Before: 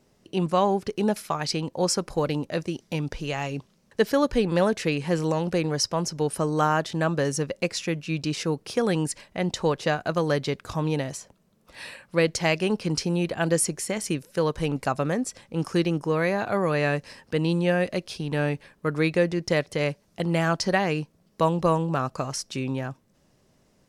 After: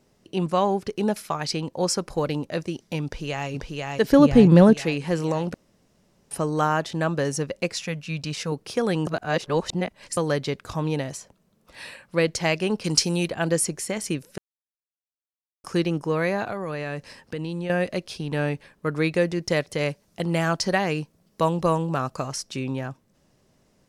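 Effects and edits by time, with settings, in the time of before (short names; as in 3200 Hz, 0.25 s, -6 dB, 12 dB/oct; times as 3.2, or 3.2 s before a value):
3.05–3.49 echo throw 0.49 s, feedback 60%, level -2 dB
4.12–4.74 bell 150 Hz +13.5 dB 2.9 oct
5.54–6.31 room tone
7.75–8.52 bell 340 Hz -14 dB 0.37 oct
9.07–10.17 reverse
12.84–13.28 bell 9300 Hz +12 dB 2.7 oct
14.38–15.64 mute
16.5–17.7 compressor 10:1, threshold -26 dBFS
19.14–22.28 high shelf 6200 Hz +4.5 dB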